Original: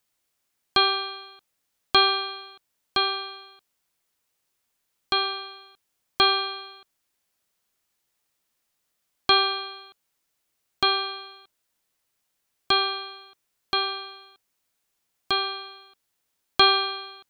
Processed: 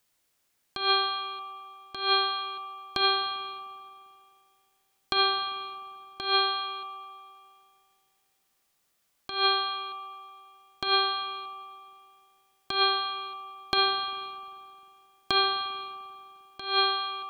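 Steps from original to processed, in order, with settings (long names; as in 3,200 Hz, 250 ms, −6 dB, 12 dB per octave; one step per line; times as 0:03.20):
compressor whose output falls as the input rises −24 dBFS, ratio −0.5
spring reverb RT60 2.5 s, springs 44/50 ms, chirp 70 ms, DRR 10 dB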